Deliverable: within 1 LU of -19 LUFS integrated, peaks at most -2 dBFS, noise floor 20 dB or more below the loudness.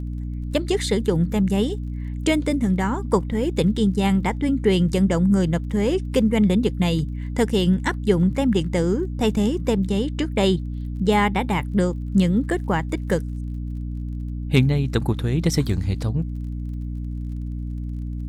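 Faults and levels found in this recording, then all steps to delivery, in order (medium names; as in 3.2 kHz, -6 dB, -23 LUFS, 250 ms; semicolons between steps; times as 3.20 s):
tick rate 32 per s; hum 60 Hz; highest harmonic 300 Hz; hum level -26 dBFS; loudness -22.5 LUFS; peak level -3.5 dBFS; loudness target -19.0 LUFS
-> de-click; hum notches 60/120/180/240/300 Hz; trim +3.5 dB; peak limiter -2 dBFS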